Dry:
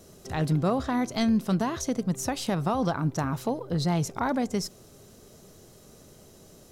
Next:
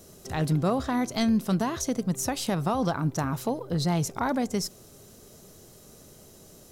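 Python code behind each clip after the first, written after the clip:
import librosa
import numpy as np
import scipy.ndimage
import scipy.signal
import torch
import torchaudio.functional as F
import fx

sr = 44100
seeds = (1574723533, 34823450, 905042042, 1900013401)

y = fx.high_shelf(x, sr, hz=7700.0, db=6.5)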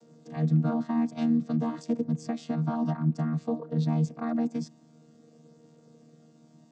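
y = fx.chord_vocoder(x, sr, chord='bare fifth', root=51)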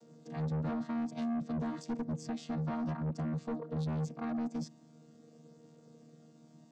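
y = 10.0 ** (-29.5 / 20.0) * np.tanh(x / 10.0 ** (-29.5 / 20.0))
y = F.gain(torch.from_numpy(y), -2.0).numpy()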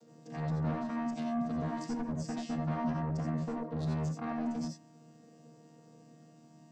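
y = fx.rev_gated(x, sr, seeds[0], gate_ms=110, shape='rising', drr_db=0.5)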